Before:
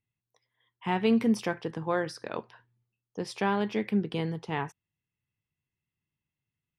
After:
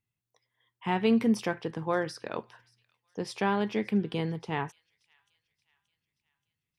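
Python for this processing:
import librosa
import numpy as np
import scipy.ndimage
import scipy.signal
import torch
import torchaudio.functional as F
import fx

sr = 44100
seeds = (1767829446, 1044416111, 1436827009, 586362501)

y = fx.echo_wet_highpass(x, sr, ms=578, feedback_pct=48, hz=2600.0, wet_db=-23.5)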